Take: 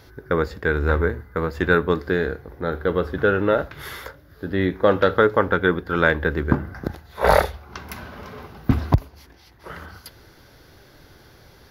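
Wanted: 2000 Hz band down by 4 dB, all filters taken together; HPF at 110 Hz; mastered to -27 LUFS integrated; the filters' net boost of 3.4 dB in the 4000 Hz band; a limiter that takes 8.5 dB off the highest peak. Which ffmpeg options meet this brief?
-af "highpass=110,equalizer=f=2k:t=o:g=-7,equalizer=f=4k:t=o:g=6,volume=-1.5dB,alimiter=limit=-12.5dB:level=0:latency=1"

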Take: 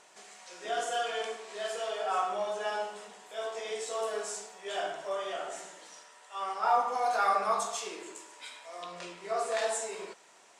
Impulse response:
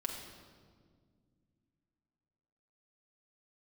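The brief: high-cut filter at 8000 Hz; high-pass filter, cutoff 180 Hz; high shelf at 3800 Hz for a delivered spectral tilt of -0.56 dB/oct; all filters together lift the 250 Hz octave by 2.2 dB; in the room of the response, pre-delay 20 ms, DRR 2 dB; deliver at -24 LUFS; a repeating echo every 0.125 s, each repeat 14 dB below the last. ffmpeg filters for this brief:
-filter_complex "[0:a]highpass=180,lowpass=8k,equalizer=f=250:t=o:g=5,highshelf=f=3.8k:g=6.5,aecho=1:1:125|250:0.2|0.0399,asplit=2[a][b];[1:a]atrim=start_sample=2205,adelay=20[c];[b][c]afir=irnorm=-1:irlink=0,volume=-3.5dB[d];[a][d]amix=inputs=2:normalize=0,volume=6.5dB"

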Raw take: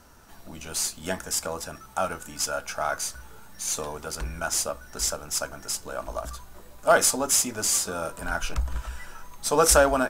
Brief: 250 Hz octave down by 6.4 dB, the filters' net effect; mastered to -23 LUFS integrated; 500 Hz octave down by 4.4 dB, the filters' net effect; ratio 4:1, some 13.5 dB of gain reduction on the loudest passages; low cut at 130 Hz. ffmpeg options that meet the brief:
-af "highpass=130,equalizer=f=250:t=o:g=-6,equalizer=f=500:t=o:g=-4.5,acompressor=threshold=-32dB:ratio=4,volume=12.5dB"

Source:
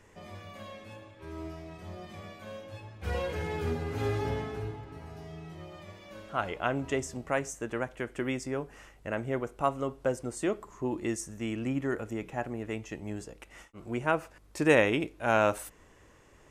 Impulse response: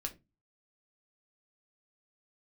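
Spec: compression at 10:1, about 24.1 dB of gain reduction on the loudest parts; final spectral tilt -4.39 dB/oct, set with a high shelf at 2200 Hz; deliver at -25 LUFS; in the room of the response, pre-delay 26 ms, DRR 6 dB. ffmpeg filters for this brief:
-filter_complex "[0:a]highshelf=f=2.2k:g=7.5,acompressor=threshold=-41dB:ratio=10,asplit=2[a][b];[1:a]atrim=start_sample=2205,adelay=26[c];[b][c]afir=irnorm=-1:irlink=0,volume=-5.5dB[d];[a][d]amix=inputs=2:normalize=0,volume=19.5dB"

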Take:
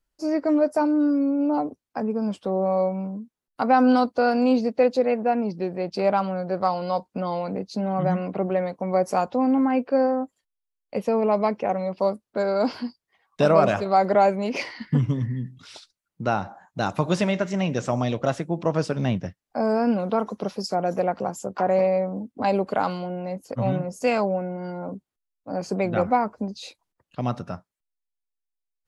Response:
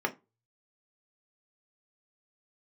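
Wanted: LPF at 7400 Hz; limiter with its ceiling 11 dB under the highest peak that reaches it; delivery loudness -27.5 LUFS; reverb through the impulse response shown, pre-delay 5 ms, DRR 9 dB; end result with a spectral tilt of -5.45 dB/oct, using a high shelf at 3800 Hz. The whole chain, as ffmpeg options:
-filter_complex "[0:a]lowpass=7.4k,highshelf=f=3.8k:g=-7.5,alimiter=limit=-16dB:level=0:latency=1,asplit=2[a][b];[1:a]atrim=start_sample=2205,adelay=5[c];[b][c]afir=irnorm=-1:irlink=0,volume=-17.5dB[d];[a][d]amix=inputs=2:normalize=0,volume=-1dB"

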